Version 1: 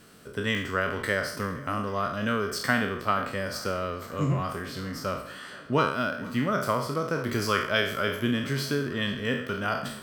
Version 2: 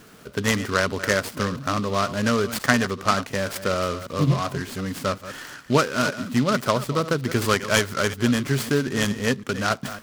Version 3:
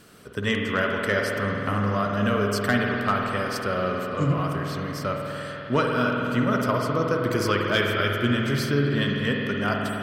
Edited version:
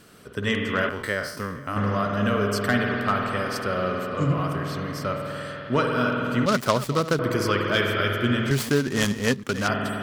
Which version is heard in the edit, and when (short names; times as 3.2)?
3
0.89–1.76 from 1
6.46–7.19 from 2
8.51–9.68 from 2